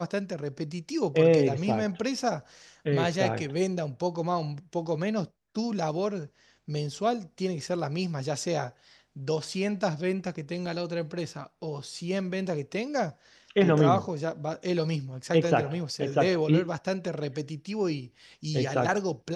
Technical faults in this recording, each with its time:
10.66 gap 2.5 ms

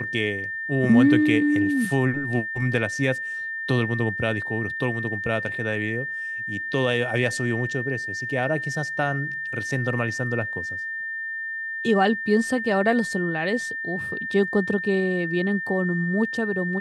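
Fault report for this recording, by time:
tone 1800 Hz -28 dBFS

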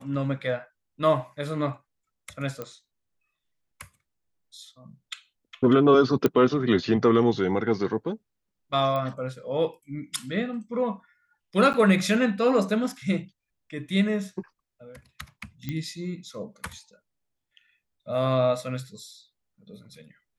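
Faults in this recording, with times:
2.62 pop -20 dBFS
6.26 pop -10 dBFS
8.96 pop -19 dBFS
11.73–11.74 gap 9.7 ms
15.69 pop -18 dBFS

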